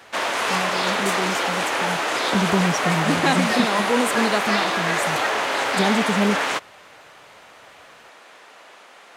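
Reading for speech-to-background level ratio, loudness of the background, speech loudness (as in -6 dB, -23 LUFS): -3.0 dB, -22.0 LUFS, -25.0 LUFS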